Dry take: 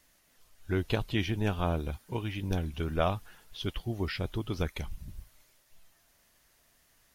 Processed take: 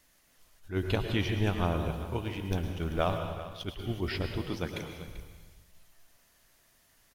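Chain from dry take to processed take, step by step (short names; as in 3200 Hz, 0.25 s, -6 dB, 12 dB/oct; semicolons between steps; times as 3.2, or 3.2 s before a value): 2.2–3.66 G.711 law mismatch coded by A; 4.37–5.08 HPF 130 Hz; echo 0.39 s -15 dB; plate-style reverb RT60 1.2 s, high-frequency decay 0.95×, pre-delay 95 ms, DRR 6 dB; attack slew limiter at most 230 dB/s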